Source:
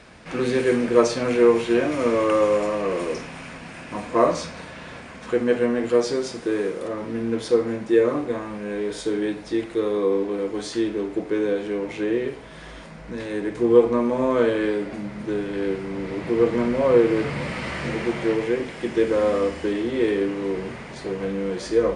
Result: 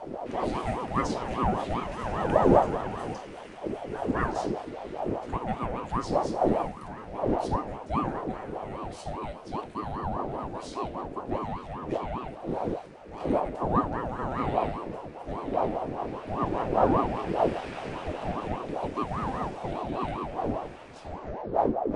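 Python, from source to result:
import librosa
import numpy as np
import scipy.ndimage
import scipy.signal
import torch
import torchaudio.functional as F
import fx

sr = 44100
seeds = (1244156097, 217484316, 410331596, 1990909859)

y = fx.tape_stop_end(x, sr, length_s=0.97)
y = fx.dmg_wind(y, sr, seeds[0], corner_hz=220.0, level_db=-25.0)
y = fx.low_shelf(y, sr, hz=80.0, db=9.0)
y = fx.ring_lfo(y, sr, carrier_hz=510.0, swing_pct=50, hz=5.0)
y = y * librosa.db_to_amplitude(-8.5)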